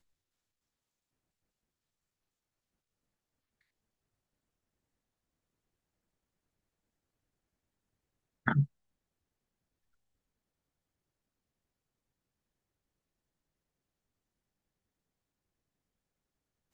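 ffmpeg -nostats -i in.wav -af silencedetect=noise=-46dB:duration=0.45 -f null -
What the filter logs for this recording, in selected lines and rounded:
silence_start: 0.00
silence_end: 8.46 | silence_duration: 8.46
silence_start: 8.66
silence_end: 16.73 | silence_duration: 8.08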